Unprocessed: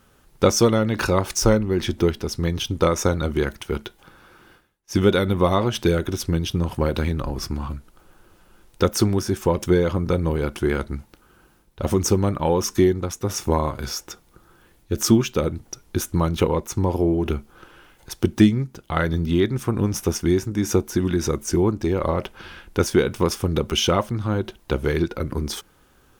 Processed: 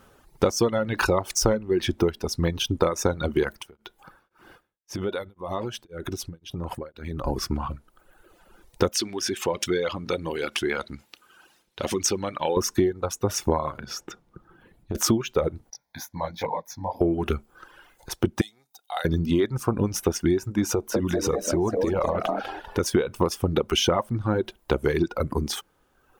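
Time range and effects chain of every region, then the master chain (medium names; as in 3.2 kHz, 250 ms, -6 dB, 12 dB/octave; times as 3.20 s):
3.51–7.25 s: compression 5:1, threshold -28 dBFS + tremolo of two beating tones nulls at 1.9 Hz
8.92–12.57 s: compression 2:1, threshold -29 dBFS + frequency weighting D
13.78–14.95 s: low-pass 3.5 kHz 6 dB/octave + peaking EQ 160 Hz +9 dB 1.6 oct + compression 10:1, threshold -27 dBFS
15.70–17.01 s: high-pass 380 Hz 6 dB/octave + static phaser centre 1.9 kHz, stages 8 + detune thickener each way 44 cents
18.41–19.05 s: differentiator + small resonant body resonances 750/3700 Hz, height 18 dB, ringing for 35 ms
20.72–22.86 s: frequency-shifting echo 198 ms, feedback 43%, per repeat +110 Hz, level -7.5 dB + compression, threshold -20 dBFS
whole clip: reverb removal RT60 1.3 s; peaking EQ 670 Hz +6 dB 2.4 oct; compression 6:1, threshold -18 dBFS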